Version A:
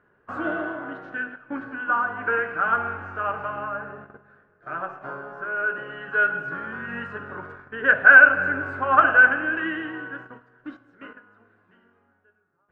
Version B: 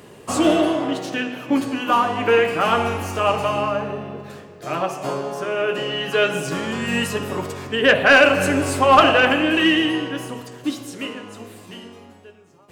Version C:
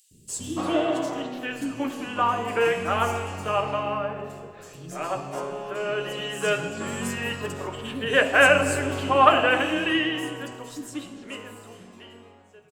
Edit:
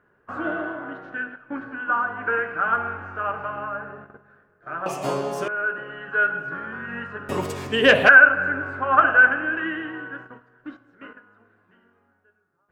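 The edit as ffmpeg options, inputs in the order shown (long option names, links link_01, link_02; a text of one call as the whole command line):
ffmpeg -i take0.wav -i take1.wav -filter_complex "[1:a]asplit=2[link_01][link_02];[0:a]asplit=3[link_03][link_04][link_05];[link_03]atrim=end=4.862[link_06];[link_01]atrim=start=4.858:end=5.482[link_07];[link_04]atrim=start=5.478:end=7.292[link_08];[link_02]atrim=start=7.288:end=8.092[link_09];[link_05]atrim=start=8.088[link_10];[link_06][link_07]acrossfade=duration=0.004:curve1=hsin:curve2=hsin[link_11];[link_11][link_08]acrossfade=duration=0.004:curve1=hsin:curve2=hsin[link_12];[link_12][link_09]acrossfade=duration=0.004:curve1=hsin:curve2=hsin[link_13];[link_13][link_10]acrossfade=duration=0.004:curve1=hsin:curve2=hsin" out.wav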